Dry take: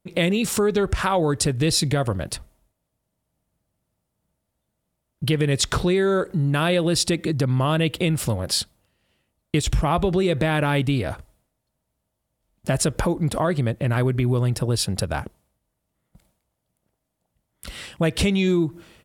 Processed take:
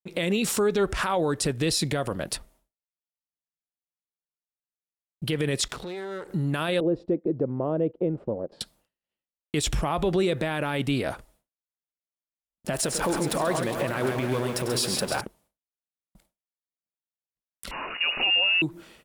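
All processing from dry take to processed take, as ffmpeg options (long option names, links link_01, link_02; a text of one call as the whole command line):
ffmpeg -i in.wav -filter_complex "[0:a]asettb=1/sr,asplit=3[link_01][link_02][link_03];[link_01]atrim=end=5.684[link_04];[link_02]atrim=start=5.68:end=6.29,asetpts=PTS-STARTPTS,afade=type=in:duration=0.004:curve=qsin,afade=type=out:start_time=0.606:duration=0.004:curve=qsin,aeval=exprs='if(lt(val(0),0),0.251*val(0),val(0))':channel_layout=same,highpass=47,acompressor=threshold=-31dB:ratio=6:attack=3.2:release=140:knee=1:detection=peak[link_05];[link_03]atrim=start=6.286[link_06];[link_04][link_05]acrossfade=duration=0.004:curve1=hsin:curve2=qsin[link_07];[link_07][link_06]acrossfade=duration=0.004:curve1=qsin:curve2=hsin,asettb=1/sr,asplit=3[link_08][link_09][link_10];[link_08]atrim=end=6.804[link_11];[link_09]atrim=start=6.8:end=8.61,asetpts=PTS-STARTPTS,afade=type=in:duration=0.004:curve=qsin,afade=type=out:start_time=1.806:duration=0.004:curve=qsin,agate=range=-17dB:threshold=-29dB:ratio=16:release=100:detection=peak,lowpass=frequency=480:width_type=q:width=1.5,lowshelf=frequency=240:gain=-8.5[link_12];[link_10]atrim=start=8.606[link_13];[link_11][link_12]acrossfade=duration=0.004:curve1=hsin:curve2=qsin[link_14];[link_14][link_13]acrossfade=duration=0.004:curve1=qsin:curve2=hsin,asettb=1/sr,asplit=3[link_15][link_16][link_17];[link_15]atrim=end=12.734[link_18];[link_16]atrim=start=12.73:end=15.21,asetpts=PTS-STARTPTS,afade=type=in:duration=0.004:curve=qsin,afade=type=out:start_time=2.476:duration=0.004:curve=qsin,aeval=exprs='val(0)+0.5*0.0266*sgn(val(0))':channel_layout=same,lowshelf=frequency=170:gain=-9.5,aecho=1:1:97|135|311|410|561|753:0.237|0.422|0.2|0.211|0.119|0.188,atrim=end_sample=109368[link_19];[link_17]atrim=start=15.206[link_20];[link_18][link_19]acrossfade=duration=0.004:curve1=hsin:curve2=qsin[link_21];[link_21][link_20]acrossfade=duration=0.004:curve1=qsin:curve2=hsin,asettb=1/sr,asplit=3[link_22][link_23][link_24];[link_22]atrim=end=17.714[link_25];[link_23]atrim=start=17.71:end=18.62,asetpts=PTS-STARTPTS,afade=type=in:duration=0.004:curve=qsin,afade=type=out:start_time=0.906:duration=0.004:curve=qsin,aeval=exprs='val(0)+0.5*0.0398*sgn(val(0))':channel_layout=same,highpass=frequency=110:width=0.5412,highpass=frequency=110:width=1.3066,lowpass=frequency=2600:width_type=q:width=0.5098,lowpass=frequency=2600:width_type=q:width=0.6013,lowpass=frequency=2600:width_type=q:width=0.9,lowpass=frequency=2600:width_type=q:width=2.563,afreqshift=-3000[link_26];[link_24]atrim=start=18.616[link_27];[link_25][link_26]acrossfade=duration=0.004:curve1=hsin:curve2=qsin[link_28];[link_28][link_27]acrossfade=duration=0.004:curve1=qsin:curve2=hsin,agate=range=-33dB:threshold=-53dB:ratio=3:detection=peak,equalizer=frequency=85:width=1:gain=-13,alimiter=limit=-16dB:level=0:latency=1:release=30" out.wav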